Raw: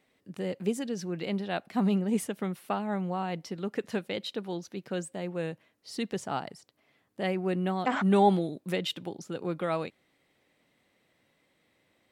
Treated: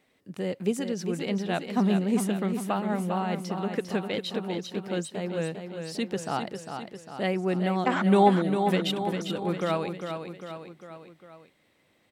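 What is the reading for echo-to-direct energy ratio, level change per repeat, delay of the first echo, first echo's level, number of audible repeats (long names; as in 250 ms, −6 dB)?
−5.5 dB, −5.0 dB, 401 ms, −7.0 dB, 4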